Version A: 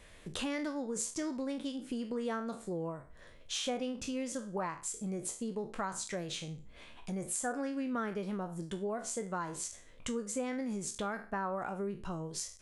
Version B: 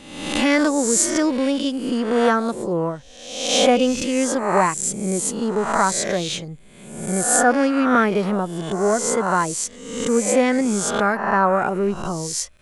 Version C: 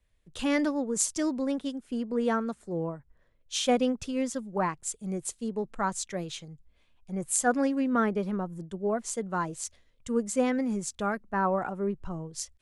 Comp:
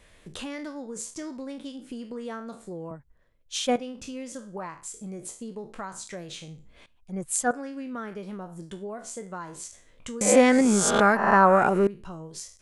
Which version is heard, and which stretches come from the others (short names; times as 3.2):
A
2.91–3.76 from C
6.86–7.51 from C
10.21–11.87 from B